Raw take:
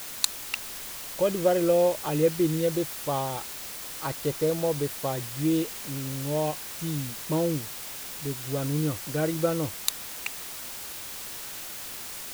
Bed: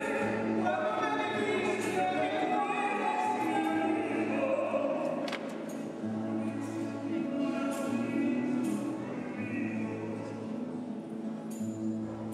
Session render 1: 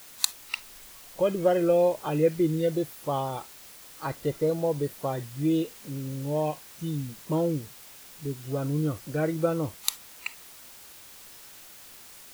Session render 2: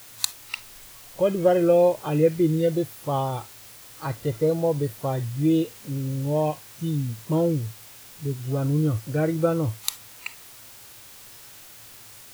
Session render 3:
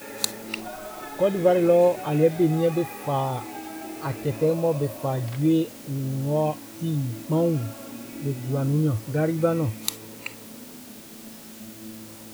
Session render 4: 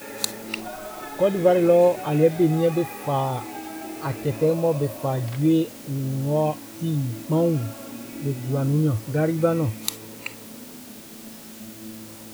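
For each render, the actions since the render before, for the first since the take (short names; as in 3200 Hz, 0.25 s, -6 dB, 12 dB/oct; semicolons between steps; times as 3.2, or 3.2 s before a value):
noise print and reduce 10 dB
bell 110 Hz +13.5 dB 0.28 oct; harmonic-percussive split harmonic +4 dB
add bed -7 dB
gain +1.5 dB; limiter -3 dBFS, peak gain reduction 2 dB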